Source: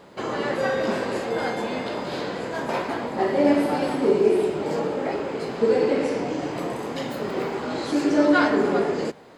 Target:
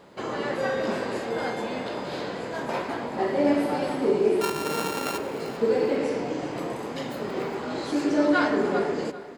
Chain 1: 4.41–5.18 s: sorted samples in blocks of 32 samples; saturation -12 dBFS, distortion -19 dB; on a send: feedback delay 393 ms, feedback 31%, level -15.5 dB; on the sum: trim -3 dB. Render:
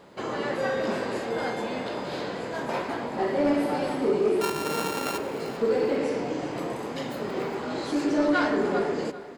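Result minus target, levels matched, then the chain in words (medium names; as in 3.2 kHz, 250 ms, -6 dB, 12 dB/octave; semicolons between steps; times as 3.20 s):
saturation: distortion +19 dB
4.41–5.18 s: sorted samples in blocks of 32 samples; saturation -1 dBFS, distortion -38 dB; on a send: feedback delay 393 ms, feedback 31%, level -15.5 dB; on the sum: trim -3 dB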